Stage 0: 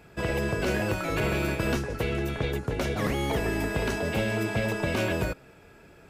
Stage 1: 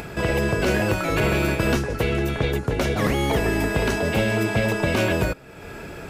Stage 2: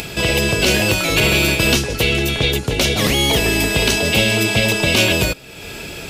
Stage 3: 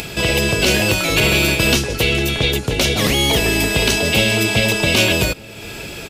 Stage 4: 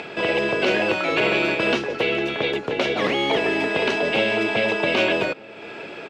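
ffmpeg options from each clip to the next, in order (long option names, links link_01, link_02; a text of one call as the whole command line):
ffmpeg -i in.wav -af "acompressor=mode=upward:threshold=-31dB:ratio=2.5,volume=6dB" out.wav
ffmpeg -i in.wav -af "highshelf=frequency=2200:width_type=q:width=1.5:gain=10.5,volume=3.5dB" out.wav
ffmpeg -i in.wav -filter_complex "[0:a]asplit=2[link_01][link_02];[link_02]adelay=1224,volume=-23dB,highshelf=frequency=4000:gain=-27.6[link_03];[link_01][link_03]amix=inputs=2:normalize=0" out.wav
ffmpeg -i in.wav -af "highpass=330,lowpass=2000" out.wav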